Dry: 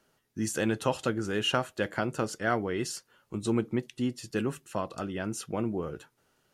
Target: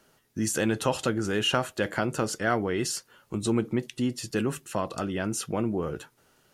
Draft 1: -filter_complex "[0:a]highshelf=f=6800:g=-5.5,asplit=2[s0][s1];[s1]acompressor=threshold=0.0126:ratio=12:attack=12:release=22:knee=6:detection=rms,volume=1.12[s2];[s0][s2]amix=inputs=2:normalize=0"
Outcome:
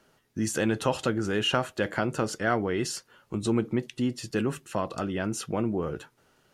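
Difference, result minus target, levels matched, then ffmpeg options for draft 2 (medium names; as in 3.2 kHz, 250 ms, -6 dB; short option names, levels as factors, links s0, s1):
8 kHz band -3.0 dB
-filter_complex "[0:a]highshelf=f=6800:g=2.5,asplit=2[s0][s1];[s1]acompressor=threshold=0.0126:ratio=12:attack=12:release=22:knee=6:detection=rms,volume=1.12[s2];[s0][s2]amix=inputs=2:normalize=0"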